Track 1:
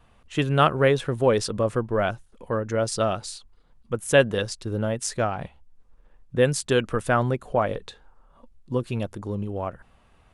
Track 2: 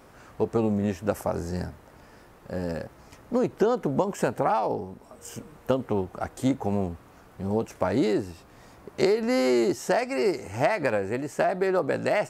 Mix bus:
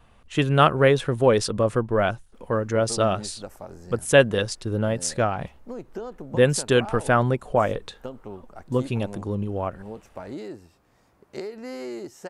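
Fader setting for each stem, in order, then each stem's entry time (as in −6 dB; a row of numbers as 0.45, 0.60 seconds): +2.0, −12.0 decibels; 0.00, 2.35 seconds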